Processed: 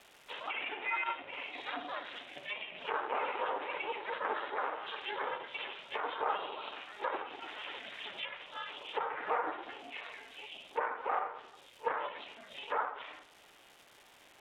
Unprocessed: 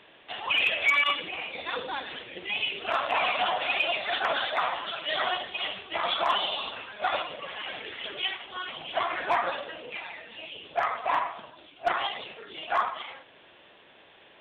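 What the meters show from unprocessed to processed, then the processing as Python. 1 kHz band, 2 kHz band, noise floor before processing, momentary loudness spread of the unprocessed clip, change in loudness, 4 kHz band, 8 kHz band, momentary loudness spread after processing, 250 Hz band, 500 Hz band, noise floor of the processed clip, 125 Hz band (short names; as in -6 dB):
-7.5 dB, -10.5 dB, -55 dBFS, 13 LU, -10.0 dB, -14.0 dB, n/a, 12 LU, -6.0 dB, -6.5 dB, -61 dBFS, under -10 dB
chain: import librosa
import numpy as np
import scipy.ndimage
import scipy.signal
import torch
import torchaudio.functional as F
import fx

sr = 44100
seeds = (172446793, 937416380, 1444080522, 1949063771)

y = fx.room_shoebox(x, sr, seeds[0], volume_m3=2300.0, walls='furnished', distance_m=0.69)
y = y * np.sin(2.0 * np.pi * 220.0 * np.arange(len(y)) / sr)
y = fx.bandpass_edges(y, sr, low_hz=320.0, high_hz=6000.0)
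y = fx.dmg_crackle(y, sr, seeds[1], per_s=530.0, level_db=-45.0)
y = fx.env_lowpass_down(y, sr, base_hz=1600.0, full_db=-29.0)
y = y * librosa.db_to_amplitude(-3.5)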